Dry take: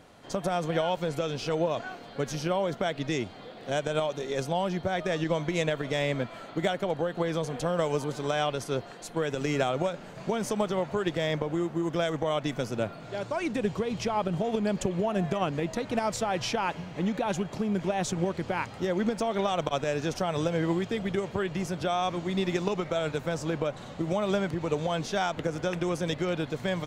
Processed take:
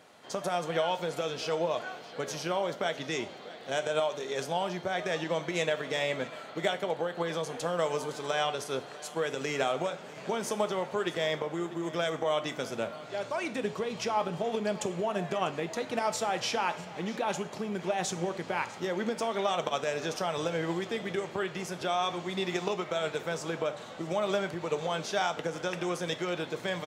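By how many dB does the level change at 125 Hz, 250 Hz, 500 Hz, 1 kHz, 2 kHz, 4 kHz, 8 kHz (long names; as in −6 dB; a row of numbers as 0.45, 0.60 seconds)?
−8.5, −6.5, −2.0, −0.5, 0.0, +0.5, +0.5 decibels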